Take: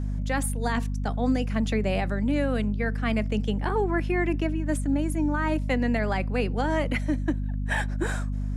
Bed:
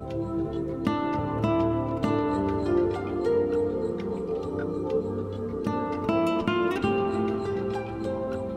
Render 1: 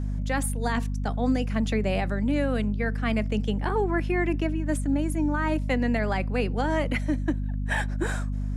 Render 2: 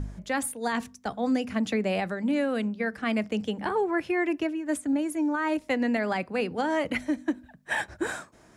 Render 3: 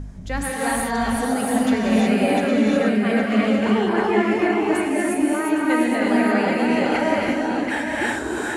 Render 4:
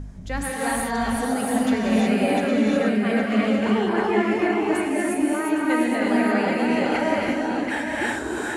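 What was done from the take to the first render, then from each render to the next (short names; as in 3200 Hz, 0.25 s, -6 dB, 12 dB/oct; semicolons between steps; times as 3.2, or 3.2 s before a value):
nothing audible
de-hum 50 Hz, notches 5
regenerating reverse delay 0.407 s, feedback 54%, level -3.5 dB; non-linear reverb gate 0.39 s rising, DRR -5 dB
gain -2 dB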